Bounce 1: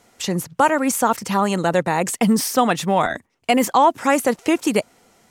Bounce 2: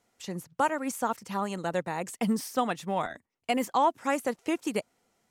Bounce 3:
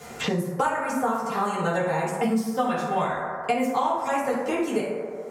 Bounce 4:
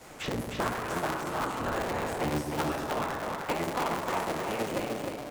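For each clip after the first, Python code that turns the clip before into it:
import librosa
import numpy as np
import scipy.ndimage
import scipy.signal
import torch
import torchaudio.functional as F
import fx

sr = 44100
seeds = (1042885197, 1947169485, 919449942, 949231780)

y1 = fx.upward_expand(x, sr, threshold_db=-27.0, expansion=1.5)
y1 = F.gain(torch.from_numpy(y1), -9.0).numpy()
y2 = fx.rev_fdn(y1, sr, rt60_s=1.2, lf_ratio=0.75, hf_ratio=0.4, size_ms=39.0, drr_db=-9.5)
y2 = fx.band_squash(y2, sr, depth_pct=100)
y2 = F.gain(torch.from_numpy(y2), -6.5).numpy()
y3 = fx.cycle_switch(y2, sr, every=3, mode='inverted')
y3 = y3 + 10.0 ** (-4.5 / 20.0) * np.pad(y3, (int(308 * sr / 1000.0), 0))[:len(y3)]
y3 = F.gain(torch.from_numpy(y3), -7.5).numpy()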